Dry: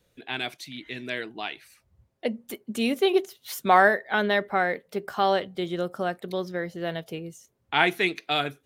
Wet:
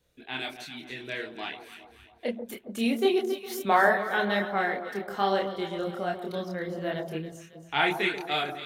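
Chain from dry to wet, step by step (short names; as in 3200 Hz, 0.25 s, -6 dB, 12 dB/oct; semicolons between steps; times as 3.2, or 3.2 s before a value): echo with dull and thin repeats by turns 0.137 s, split 1100 Hz, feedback 67%, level -8 dB; chorus voices 6, 1.2 Hz, delay 28 ms, depth 3 ms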